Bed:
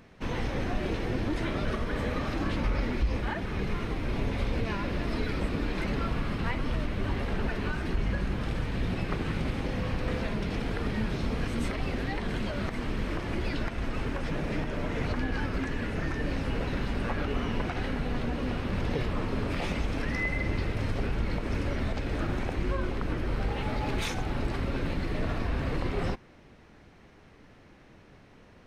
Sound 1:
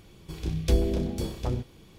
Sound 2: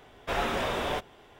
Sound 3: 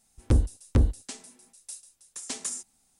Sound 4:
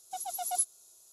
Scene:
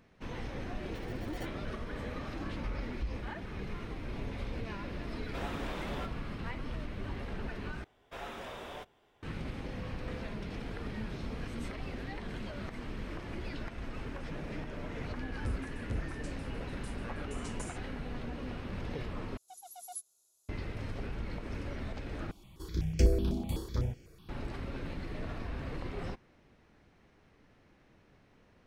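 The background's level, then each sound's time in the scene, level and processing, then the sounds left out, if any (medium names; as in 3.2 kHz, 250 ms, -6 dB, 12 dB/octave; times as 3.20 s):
bed -9 dB
0.82 s: add 4 -16 dB + sample-and-hold 35×
5.06 s: add 2 -12.5 dB
7.84 s: replace with 2 -14 dB
15.15 s: add 3 -16 dB
19.37 s: replace with 4 -13.5 dB
22.31 s: replace with 1 -1.5 dB + stepped phaser 8 Hz 480–3700 Hz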